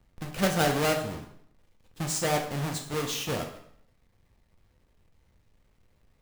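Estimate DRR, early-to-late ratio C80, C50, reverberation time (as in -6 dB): 2.0 dB, 11.0 dB, 8.0 dB, 0.65 s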